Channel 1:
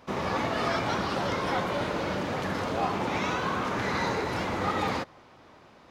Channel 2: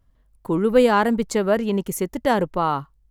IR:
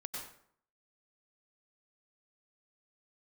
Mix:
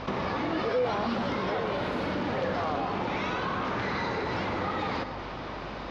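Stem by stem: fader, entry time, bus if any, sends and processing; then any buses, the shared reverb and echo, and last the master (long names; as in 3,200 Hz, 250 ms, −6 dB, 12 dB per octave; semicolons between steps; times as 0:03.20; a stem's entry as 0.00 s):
+1.5 dB, 0.00 s, send −9 dB, low-pass filter 5,100 Hz 24 dB per octave; downward compressor 6 to 1, threshold −38 dBFS, peak gain reduction 14 dB
−1.5 dB, 0.00 s, no send, spectrum smeared in time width 299 ms; formant filter that steps through the vowels 4.7 Hz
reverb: on, RT60 0.65 s, pre-delay 87 ms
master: mains hum 50 Hz, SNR 24 dB; envelope flattener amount 50%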